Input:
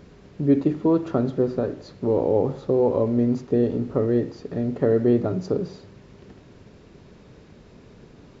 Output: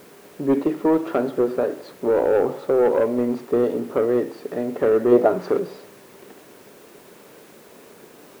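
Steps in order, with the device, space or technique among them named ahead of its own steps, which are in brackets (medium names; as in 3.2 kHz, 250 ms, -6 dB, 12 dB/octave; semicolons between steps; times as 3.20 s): tape answering machine (band-pass 380–3100 Hz; saturation -18 dBFS, distortion -15 dB; wow and flutter; white noise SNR 31 dB); 5.11–5.58 s: peaking EQ 450 Hz -> 2.1 kHz +8.5 dB 1.5 oct; trim +7 dB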